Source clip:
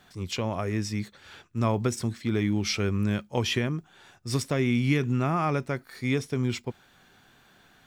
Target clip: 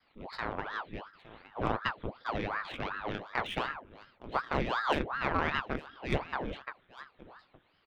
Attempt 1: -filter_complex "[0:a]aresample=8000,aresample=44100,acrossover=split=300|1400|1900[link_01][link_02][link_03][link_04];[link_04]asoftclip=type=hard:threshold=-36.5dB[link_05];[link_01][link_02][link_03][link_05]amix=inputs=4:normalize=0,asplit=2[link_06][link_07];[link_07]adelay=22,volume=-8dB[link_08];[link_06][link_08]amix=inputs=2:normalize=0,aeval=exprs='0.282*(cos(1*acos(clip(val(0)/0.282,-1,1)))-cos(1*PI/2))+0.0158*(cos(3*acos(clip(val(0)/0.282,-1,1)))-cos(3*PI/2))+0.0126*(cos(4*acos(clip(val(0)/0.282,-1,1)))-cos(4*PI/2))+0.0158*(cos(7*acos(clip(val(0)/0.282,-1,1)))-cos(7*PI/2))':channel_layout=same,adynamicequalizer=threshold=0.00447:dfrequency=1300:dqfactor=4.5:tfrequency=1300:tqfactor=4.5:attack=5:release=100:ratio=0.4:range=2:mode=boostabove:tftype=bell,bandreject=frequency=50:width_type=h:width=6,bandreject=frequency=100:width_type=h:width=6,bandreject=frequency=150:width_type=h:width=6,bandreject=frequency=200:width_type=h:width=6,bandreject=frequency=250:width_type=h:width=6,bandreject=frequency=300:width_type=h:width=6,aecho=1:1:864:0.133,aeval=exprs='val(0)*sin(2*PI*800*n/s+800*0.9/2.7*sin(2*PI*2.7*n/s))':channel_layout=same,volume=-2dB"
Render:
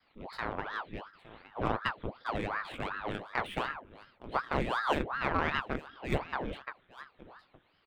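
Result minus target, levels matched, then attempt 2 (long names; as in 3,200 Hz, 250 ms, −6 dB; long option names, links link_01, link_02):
hard clipping: distortion +10 dB
-filter_complex "[0:a]aresample=8000,aresample=44100,acrossover=split=300|1400|1900[link_01][link_02][link_03][link_04];[link_04]asoftclip=type=hard:threshold=-28dB[link_05];[link_01][link_02][link_03][link_05]amix=inputs=4:normalize=0,asplit=2[link_06][link_07];[link_07]adelay=22,volume=-8dB[link_08];[link_06][link_08]amix=inputs=2:normalize=0,aeval=exprs='0.282*(cos(1*acos(clip(val(0)/0.282,-1,1)))-cos(1*PI/2))+0.0158*(cos(3*acos(clip(val(0)/0.282,-1,1)))-cos(3*PI/2))+0.0126*(cos(4*acos(clip(val(0)/0.282,-1,1)))-cos(4*PI/2))+0.0158*(cos(7*acos(clip(val(0)/0.282,-1,1)))-cos(7*PI/2))':channel_layout=same,adynamicequalizer=threshold=0.00447:dfrequency=1300:dqfactor=4.5:tfrequency=1300:tqfactor=4.5:attack=5:release=100:ratio=0.4:range=2:mode=boostabove:tftype=bell,bandreject=frequency=50:width_type=h:width=6,bandreject=frequency=100:width_type=h:width=6,bandreject=frequency=150:width_type=h:width=6,bandreject=frequency=200:width_type=h:width=6,bandreject=frequency=250:width_type=h:width=6,bandreject=frequency=300:width_type=h:width=6,aecho=1:1:864:0.133,aeval=exprs='val(0)*sin(2*PI*800*n/s+800*0.9/2.7*sin(2*PI*2.7*n/s))':channel_layout=same,volume=-2dB"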